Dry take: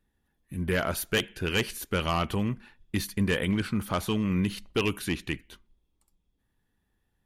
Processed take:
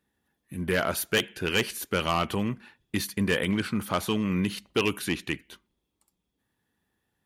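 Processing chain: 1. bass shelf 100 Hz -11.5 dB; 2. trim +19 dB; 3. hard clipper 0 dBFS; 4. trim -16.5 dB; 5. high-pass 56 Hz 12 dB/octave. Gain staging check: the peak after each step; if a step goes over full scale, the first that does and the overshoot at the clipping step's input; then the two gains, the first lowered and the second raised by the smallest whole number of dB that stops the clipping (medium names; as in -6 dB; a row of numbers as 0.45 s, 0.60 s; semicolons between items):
-14.5 dBFS, +4.5 dBFS, 0.0 dBFS, -16.5 dBFS, -14.0 dBFS; step 2, 4.5 dB; step 2 +14 dB, step 4 -11.5 dB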